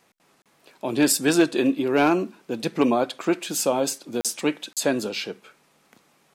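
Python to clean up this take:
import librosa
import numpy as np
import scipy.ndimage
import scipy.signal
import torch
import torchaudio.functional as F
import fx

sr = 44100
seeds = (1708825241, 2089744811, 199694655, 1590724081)

y = fx.fix_declip(x, sr, threshold_db=-9.5)
y = fx.fix_interpolate(y, sr, at_s=(0.42, 4.21, 4.73), length_ms=37.0)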